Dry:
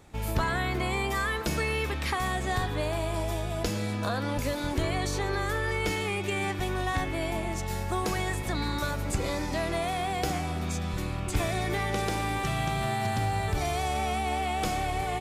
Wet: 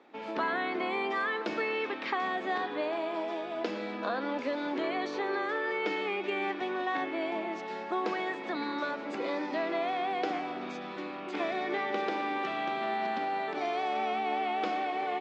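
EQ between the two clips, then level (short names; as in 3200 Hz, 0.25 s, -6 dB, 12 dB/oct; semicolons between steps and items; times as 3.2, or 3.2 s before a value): steep high-pass 240 Hz 36 dB/oct; LPF 4600 Hz 12 dB/oct; air absorption 180 m; 0.0 dB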